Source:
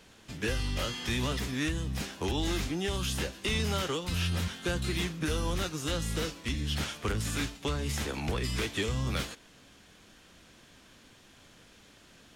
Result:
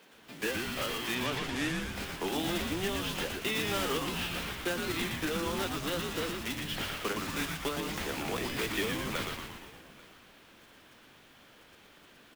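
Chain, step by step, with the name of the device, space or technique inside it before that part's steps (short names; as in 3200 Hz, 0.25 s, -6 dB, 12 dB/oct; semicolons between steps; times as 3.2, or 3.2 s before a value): early digital voice recorder (BPF 250–3600 Hz; block floating point 3-bit); HPF 130 Hz; 1.14–1.8 LPF 5000 Hz -> 12000 Hz 12 dB/oct; frequency-shifting echo 0.117 s, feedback 58%, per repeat -120 Hz, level -4 dB; echo 0.84 s -22.5 dB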